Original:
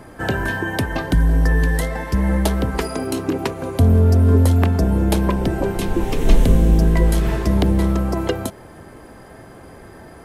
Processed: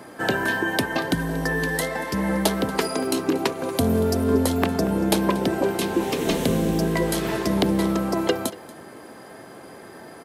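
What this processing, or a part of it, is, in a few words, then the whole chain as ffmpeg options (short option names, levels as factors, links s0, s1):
presence and air boost: -filter_complex "[0:a]highpass=200,equalizer=f=4200:t=o:w=0.87:g=3.5,highshelf=f=9900:g=3.5,asettb=1/sr,asplit=3[s0][s1][s2];[s0]atrim=end=3.684[s3];[s1]atrim=start=3.68:end=4.24,asetpts=PTS-STARTPTS,afade=t=in:d=0.004:c=qsin,afade=t=out:st=0.556:d=0.004:c=qsin,highshelf=f=5000:g=5[s4];[s2]atrim=start=4.236[s5];[s3][s4]acrossfade=d=0.004:c1=hsin:c2=qsin[s6];[s6][s5]acrossfade=d=0.004:c1=qsin:c2=hsin,aecho=1:1:234:0.106"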